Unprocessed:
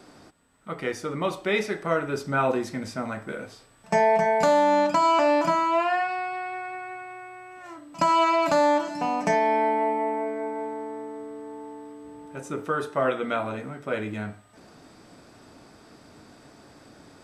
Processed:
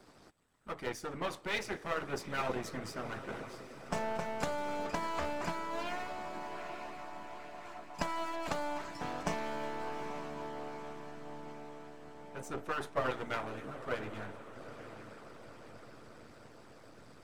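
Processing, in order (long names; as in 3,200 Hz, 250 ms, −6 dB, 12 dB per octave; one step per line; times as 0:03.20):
gain on one half-wave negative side −12 dB
feedback delay with all-pass diffusion 873 ms, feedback 59%, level −11 dB
harmonic and percussive parts rebalanced harmonic −13 dB
level −1.5 dB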